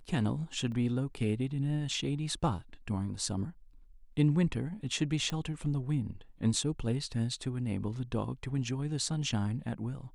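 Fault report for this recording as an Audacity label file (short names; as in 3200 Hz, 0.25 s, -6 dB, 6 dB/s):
0.720000	0.720000	gap 2.4 ms
5.300000	5.300000	pop -22 dBFS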